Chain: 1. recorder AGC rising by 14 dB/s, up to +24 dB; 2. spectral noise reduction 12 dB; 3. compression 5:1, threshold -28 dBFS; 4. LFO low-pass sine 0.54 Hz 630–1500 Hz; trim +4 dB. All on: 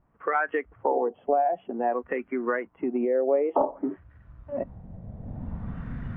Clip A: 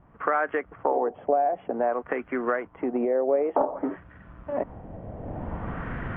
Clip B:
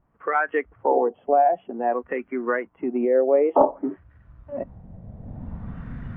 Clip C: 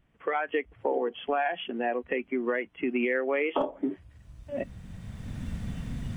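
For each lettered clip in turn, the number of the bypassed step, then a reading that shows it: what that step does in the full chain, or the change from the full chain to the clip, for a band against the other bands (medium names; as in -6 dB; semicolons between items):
2, crest factor change +2.5 dB; 3, mean gain reduction 1.5 dB; 4, 1 kHz band -4.5 dB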